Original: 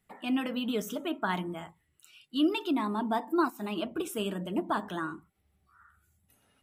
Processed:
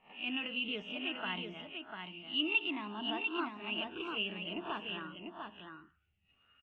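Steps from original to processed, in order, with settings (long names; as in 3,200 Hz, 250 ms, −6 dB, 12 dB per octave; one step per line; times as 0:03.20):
peak hold with a rise ahead of every peak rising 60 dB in 0.33 s
transistor ladder low-pass 2,900 Hz, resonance 85%
low-shelf EQ 67 Hz +7.5 dB
on a send: single-tap delay 695 ms −5.5 dB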